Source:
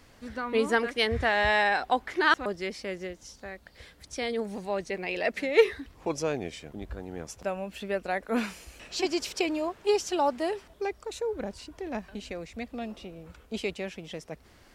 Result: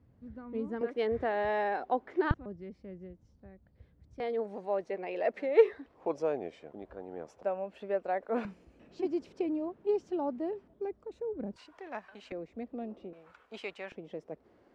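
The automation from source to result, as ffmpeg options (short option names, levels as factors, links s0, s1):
-af "asetnsamples=n=441:p=0,asendcmd='0.81 bandpass f 400;2.31 bandpass f 110;4.2 bandpass f 590;8.45 bandpass f 230;11.56 bandpass f 1200;12.32 bandpass f 360;13.13 bandpass f 1200;13.92 bandpass f 410',bandpass=f=120:t=q:w=1.1:csg=0"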